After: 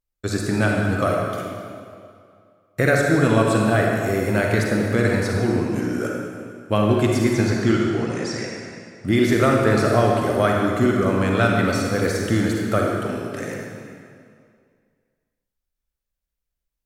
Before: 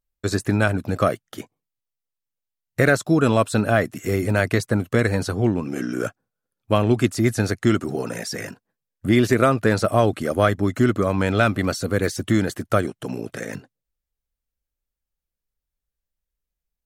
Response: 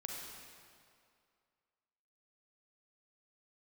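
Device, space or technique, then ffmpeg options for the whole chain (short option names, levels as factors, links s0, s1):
stairwell: -filter_complex "[0:a]asettb=1/sr,asplit=3[s0][s1][s2];[s0]atrim=end=7.334[s3];[s1]atrim=start=7.33:end=9.08,asetpts=PTS-STARTPTS,afade=t=in:d=0.004:c=qsin,afade=t=out:st=1.746:d=0.004:c=qsin,lowpass=f=7500:w=0.5412,lowpass=f=7500:w=1.3066[s4];[s2]atrim=start=9.076[s5];[s3][s4]acrossfade=d=0.004:c1=hsin:c2=qsin[s6];[s6][s5]acrossfade=d=0.004:c1=qsin:c2=hsin[s7];[1:a]atrim=start_sample=2205[s8];[s7][s8]afir=irnorm=-1:irlink=0,volume=1.26"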